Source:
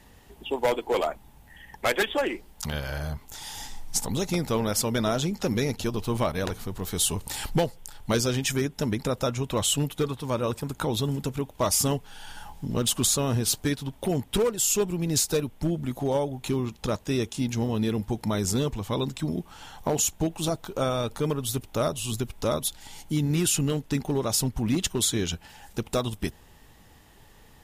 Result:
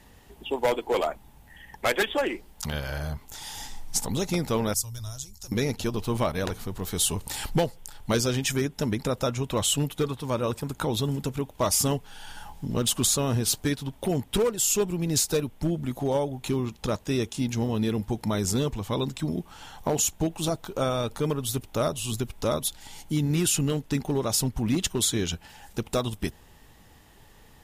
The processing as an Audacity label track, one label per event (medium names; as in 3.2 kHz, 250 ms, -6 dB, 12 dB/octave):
4.740000	5.520000	FFT filter 110 Hz 0 dB, 160 Hz -26 dB, 450 Hz -29 dB, 960 Hz -19 dB, 2.2 kHz -23 dB, 3.5 kHz -14 dB, 6.2 kHz 0 dB